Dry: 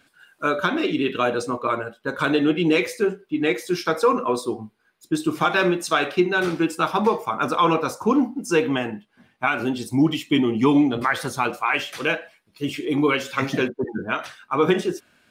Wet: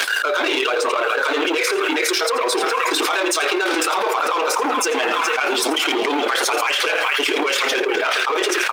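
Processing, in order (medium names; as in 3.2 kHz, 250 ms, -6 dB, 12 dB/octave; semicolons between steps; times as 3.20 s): peaking EQ 3.1 kHz +5 dB 2.3 oct; peak limiter -16.5 dBFS, peak gain reduction 11.5 dB; band-passed feedback delay 737 ms, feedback 69%, band-pass 1.8 kHz, level -12 dB; waveshaping leveller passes 2; steep high-pass 380 Hz 36 dB/octave; delay 153 ms -14 dB; granular stretch 0.57×, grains 55 ms; level flattener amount 100%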